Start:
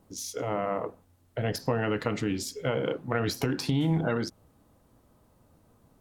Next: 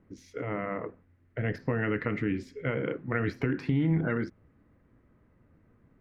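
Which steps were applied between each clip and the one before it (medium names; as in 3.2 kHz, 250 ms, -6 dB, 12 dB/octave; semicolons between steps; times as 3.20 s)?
FFT filter 370 Hz 0 dB, 810 Hz -10 dB, 2 kHz +5 dB, 3.4 kHz -14 dB, 10 kHz -29 dB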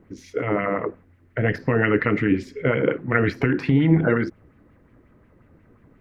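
sweeping bell 5.6 Hz 320–3000 Hz +8 dB; trim +7.5 dB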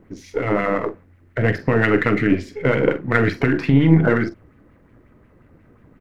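partial rectifier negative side -3 dB; doubling 44 ms -12 dB; trim +4 dB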